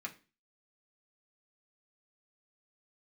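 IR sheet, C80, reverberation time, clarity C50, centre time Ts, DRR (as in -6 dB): 21.0 dB, 0.35 s, 16.0 dB, 8 ms, -1.5 dB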